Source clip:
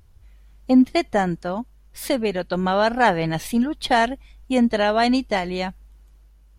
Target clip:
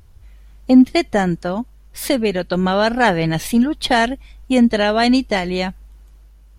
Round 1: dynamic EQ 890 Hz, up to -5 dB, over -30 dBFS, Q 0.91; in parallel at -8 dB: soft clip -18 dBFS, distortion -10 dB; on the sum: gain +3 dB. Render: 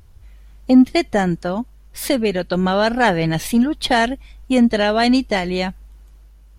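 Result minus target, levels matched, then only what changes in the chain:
soft clip: distortion +11 dB
change: soft clip -9 dBFS, distortion -21 dB

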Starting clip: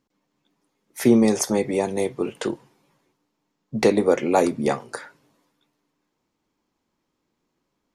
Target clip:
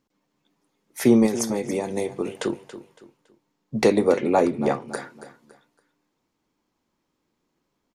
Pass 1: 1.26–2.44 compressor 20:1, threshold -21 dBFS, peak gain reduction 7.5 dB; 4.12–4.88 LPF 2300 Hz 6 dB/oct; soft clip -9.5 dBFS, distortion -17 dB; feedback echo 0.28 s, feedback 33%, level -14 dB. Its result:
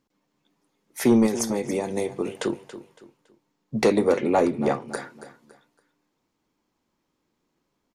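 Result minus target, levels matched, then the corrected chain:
soft clip: distortion +15 dB
1.26–2.44 compressor 20:1, threshold -21 dBFS, peak gain reduction 7.5 dB; 4.12–4.88 LPF 2300 Hz 6 dB/oct; soft clip -0.5 dBFS, distortion -32 dB; feedback echo 0.28 s, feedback 33%, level -14 dB

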